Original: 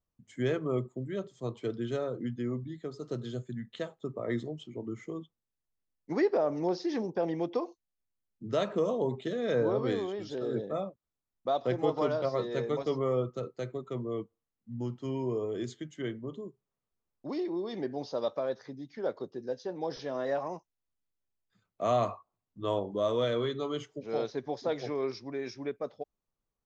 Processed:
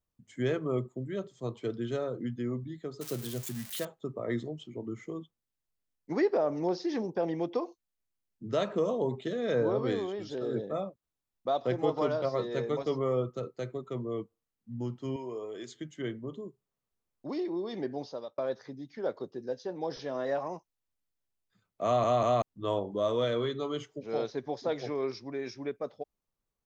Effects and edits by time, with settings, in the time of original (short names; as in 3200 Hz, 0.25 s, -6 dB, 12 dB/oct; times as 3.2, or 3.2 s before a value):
3.01–3.85 switching spikes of -29 dBFS
15.16–15.75 HPF 700 Hz 6 dB/oct
17.96–18.38 fade out
21.85 stutter in place 0.19 s, 3 plays